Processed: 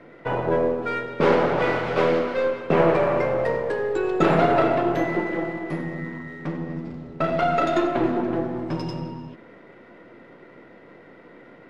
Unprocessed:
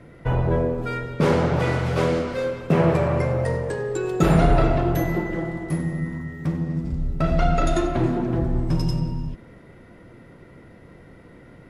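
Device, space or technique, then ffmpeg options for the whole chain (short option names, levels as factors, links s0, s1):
crystal radio: -af "highpass=290,lowpass=3400,aeval=exprs='if(lt(val(0),0),0.708*val(0),val(0))':c=same,volume=1.68"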